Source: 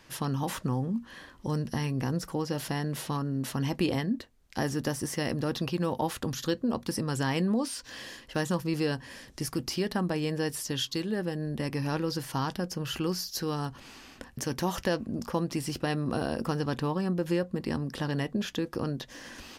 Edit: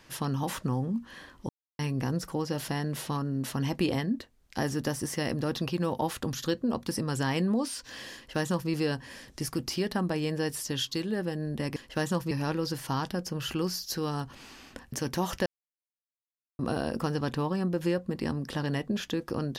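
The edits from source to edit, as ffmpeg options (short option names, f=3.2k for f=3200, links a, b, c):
-filter_complex "[0:a]asplit=7[a][b][c][d][e][f][g];[a]atrim=end=1.49,asetpts=PTS-STARTPTS,afade=t=out:st=1.486:d=0.004:c=hsin[h];[b]atrim=start=1.49:end=1.79,asetpts=PTS-STARTPTS,volume=0[i];[c]atrim=start=1.79:end=11.762,asetpts=PTS-STARTPTS,afade=t=in:d=0.004:c=hsin[j];[d]atrim=start=8.148:end=8.702[k];[e]atrim=start=11.758:end=14.91,asetpts=PTS-STARTPTS,afade=t=out:st=3.148:d=0.004:c=hsin[l];[f]atrim=start=14.91:end=16.04,asetpts=PTS-STARTPTS,volume=0[m];[g]atrim=start=16.04,asetpts=PTS-STARTPTS,afade=t=in:d=0.004:c=hsin[n];[h][i][j]concat=n=3:v=0:a=1[o];[o][k]acrossfade=d=0.004:c1=hsin:c2=hsin[p];[l][m][n]concat=n=3:v=0:a=1[q];[p][q]acrossfade=d=0.004:c1=hsin:c2=hsin"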